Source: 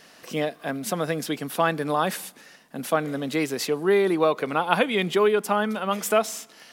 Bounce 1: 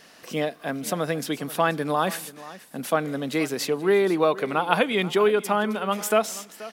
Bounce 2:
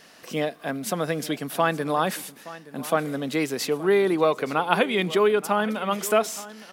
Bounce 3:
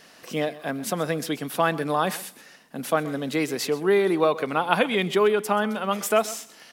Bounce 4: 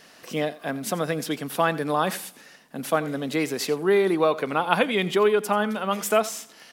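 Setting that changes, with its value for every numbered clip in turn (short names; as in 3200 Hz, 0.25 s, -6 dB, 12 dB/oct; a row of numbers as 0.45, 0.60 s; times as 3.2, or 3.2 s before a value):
echo, time: 481, 872, 129, 87 ms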